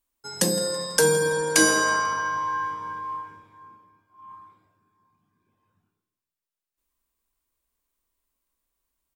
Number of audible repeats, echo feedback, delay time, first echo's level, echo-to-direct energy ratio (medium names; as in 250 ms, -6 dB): 3, 43%, 164 ms, -19.0 dB, -18.0 dB